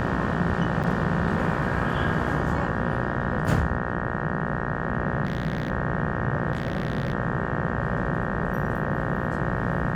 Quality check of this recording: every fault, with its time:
buzz 60 Hz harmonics 31 -30 dBFS
0.83–0.84 s: dropout 7.7 ms
5.24–5.70 s: clipped -21.5 dBFS
6.53–7.13 s: clipped -21 dBFS

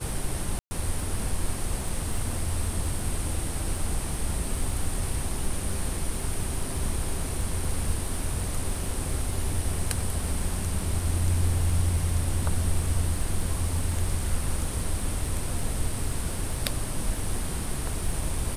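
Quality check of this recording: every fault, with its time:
crackle 15 per s -32 dBFS
0.59–0.71 s: dropout 120 ms

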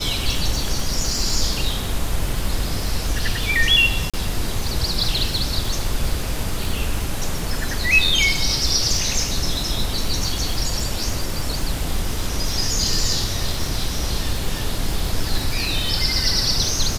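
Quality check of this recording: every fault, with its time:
crackle 89 per s -25 dBFS
4.10–4.14 s: dropout 36 ms

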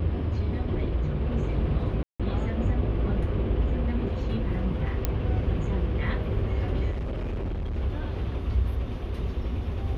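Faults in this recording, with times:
2.03–2.20 s: dropout 166 ms
5.05 s: pop -11 dBFS
6.90–7.78 s: clipped -27.5 dBFS

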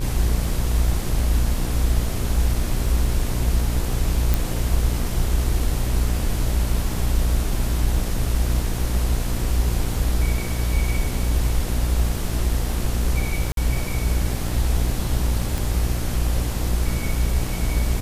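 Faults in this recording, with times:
buzz 60 Hz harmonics 40 -25 dBFS
crackle 12 per s -30 dBFS
4.34 s: pop
13.52–13.57 s: dropout 52 ms
15.58 s: pop

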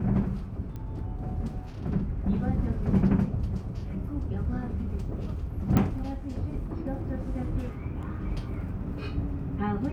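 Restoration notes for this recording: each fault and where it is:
0.76 s: pop -27 dBFS
5.77 s: pop -12 dBFS

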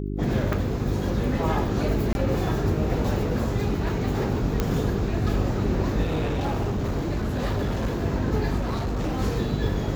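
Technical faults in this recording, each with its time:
hum 50 Hz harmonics 8 -29 dBFS
0.53 s: pop
2.13–2.15 s: dropout 21 ms
4.60 s: pop -10 dBFS
6.03–8.04 s: clipped -21.5 dBFS
8.58–9.18 s: clipped -23 dBFS

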